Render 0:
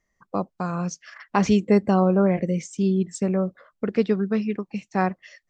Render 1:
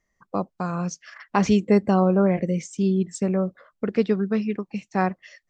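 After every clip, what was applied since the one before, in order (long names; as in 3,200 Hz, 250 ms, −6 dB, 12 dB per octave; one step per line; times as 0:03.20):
no processing that can be heard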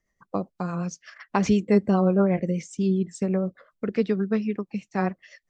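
rotating-speaker cabinet horn 8 Hz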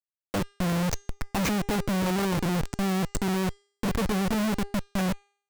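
comparator with hysteresis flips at −33.5 dBFS
hum removal 403.8 Hz, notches 22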